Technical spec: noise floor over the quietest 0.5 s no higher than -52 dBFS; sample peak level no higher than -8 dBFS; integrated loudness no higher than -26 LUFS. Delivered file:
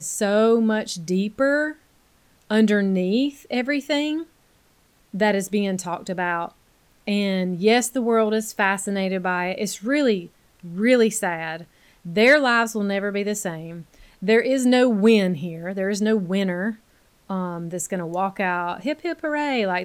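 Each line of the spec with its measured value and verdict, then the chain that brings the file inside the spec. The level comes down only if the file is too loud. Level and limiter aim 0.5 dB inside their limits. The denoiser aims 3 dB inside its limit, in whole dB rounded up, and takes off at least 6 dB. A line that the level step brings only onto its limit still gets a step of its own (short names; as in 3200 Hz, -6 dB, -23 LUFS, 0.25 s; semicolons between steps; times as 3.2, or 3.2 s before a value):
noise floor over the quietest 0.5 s -60 dBFS: OK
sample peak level -6.5 dBFS: fail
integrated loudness -22.0 LUFS: fail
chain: gain -4.5 dB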